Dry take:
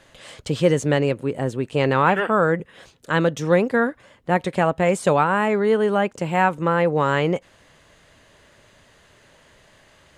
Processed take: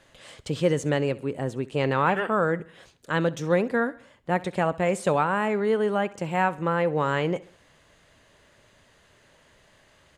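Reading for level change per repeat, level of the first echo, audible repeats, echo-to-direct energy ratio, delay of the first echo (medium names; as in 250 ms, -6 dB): -6.5 dB, -20.0 dB, 3, -19.0 dB, 66 ms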